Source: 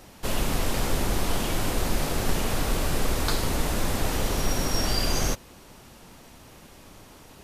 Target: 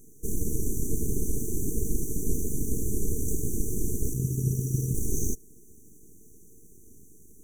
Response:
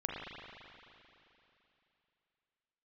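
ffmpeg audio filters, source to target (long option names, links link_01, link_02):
-filter_complex "[0:a]aeval=exprs='abs(val(0))':channel_layout=same,asplit=3[link_01][link_02][link_03];[link_01]afade=type=out:start_time=4.13:duration=0.02[link_04];[link_02]aeval=exprs='val(0)*sin(2*PI*130*n/s)':channel_layout=same,afade=type=in:start_time=4.13:duration=0.02,afade=type=out:start_time=4.93:duration=0.02[link_05];[link_03]afade=type=in:start_time=4.93:duration=0.02[link_06];[link_04][link_05][link_06]amix=inputs=3:normalize=0,afftfilt=real='re*(1-between(b*sr/4096,470,5800))':imag='im*(1-between(b*sr/4096,470,5800))':win_size=4096:overlap=0.75"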